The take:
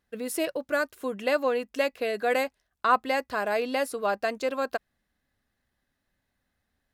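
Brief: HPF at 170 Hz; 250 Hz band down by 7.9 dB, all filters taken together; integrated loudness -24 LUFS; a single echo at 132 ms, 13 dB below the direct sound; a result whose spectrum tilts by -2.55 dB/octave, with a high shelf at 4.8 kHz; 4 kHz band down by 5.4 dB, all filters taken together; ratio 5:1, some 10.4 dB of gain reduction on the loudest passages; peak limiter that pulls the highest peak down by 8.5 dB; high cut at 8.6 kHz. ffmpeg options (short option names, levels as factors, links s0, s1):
-af "highpass=170,lowpass=8600,equalizer=f=250:t=o:g=-8.5,equalizer=f=4000:t=o:g=-5.5,highshelf=f=4800:g=-4,acompressor=threshold=0.0316:ratio=5,alimiter=level_in=1.41:limit=0.0631:level=0:latency=1,volume=0.708,aecho=1:1:132:0.224,volume=4.73"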